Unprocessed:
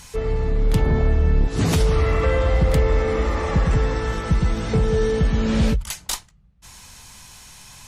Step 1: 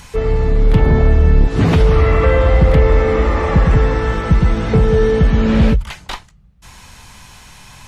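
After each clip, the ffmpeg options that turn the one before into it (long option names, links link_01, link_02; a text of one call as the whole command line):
ffmpeg -i in.wav -filter_complex "[0:a]acrossover=split=3400[link_01][link_02];[link_02]acompressor=threshold=-52dB:ratio=4:attack=1:release=60[link_03];[link_01][link_03]amix=inputs=2:normalize=0,volume=7dB" out.wav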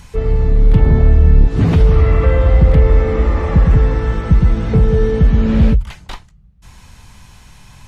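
ffmpeg -i in.wav -af "lowshelf=frequency=280:gain=8.5,volume=-6dB" out.wav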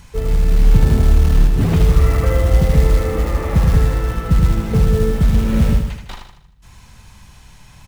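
ffmpeg -i in.wav -filter_complex "[0:a]acrusher=bits=6:mode=log:mix=0:aa=0.000001,asplit=2[link_01][link_02];[link_02]aecho=0:1:78|156|234|312|390|468:0.531|0.244|0.112|0.0517|0.0238|0.0109[link_03];[link_01][link_03]amix=inputs=2:normalize=0,volume=-3.5dB" out.wav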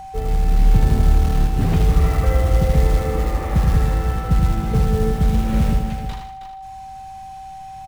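ffmpeg -i in.wav -af "aecho=1:1:319:0.335,aeval=exprs='val(0)+0.0355*sin(2*PI*770*n/s)':channel_layout=same,volume=-3.5dB" out.wav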